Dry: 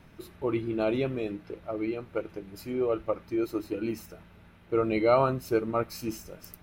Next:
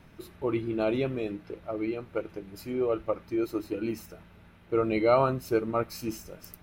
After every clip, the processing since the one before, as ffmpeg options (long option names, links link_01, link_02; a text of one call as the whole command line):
ffmpeg -i in.wav -af anull out.wav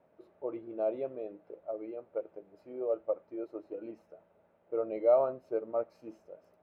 ffmpeg -i in.wav -af "bandpass=frequency=590:width_type=q:width=3.3:csg=0" out.wav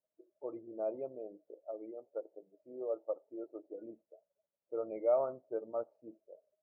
ffmpeg -i in.wav -af "afftdn=noise_reduction=26:noise_floor=-50,volume=-5dB" out.wav